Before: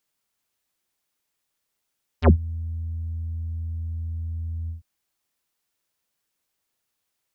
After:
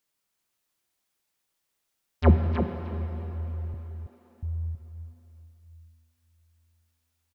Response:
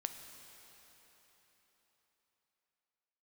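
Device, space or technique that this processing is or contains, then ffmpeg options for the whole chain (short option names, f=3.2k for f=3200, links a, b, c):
cave: -filter_complex "[0:a]aecho=1:1:306:0.178[a];[1:a]atrim=start_sample=2205[b];[a][b]afir=irnorm=-1:irlink=0,asettb=1/sr,asplit=3[c][d][e];[c]atrim=end=3.744[f];[d]atrim=start=3.74:end=4.43,asetpts=PTS-STARTPTS,afade=t=in:d=0.004:c=qsin,afade=t=out:st=0.686:d=0.004:c=qsin,highpass=f=220:w=0.5412,highpass=f=220:w=1.3066[g];[e]atrim=start=4.426[h];[f][g]acrossfade=d=0.004:c1=hsin:c2=qsin[i];[i][h]acrossfade=d=0.004:c1=qsin:c2=hsin,aecho=1:1:323:0.473"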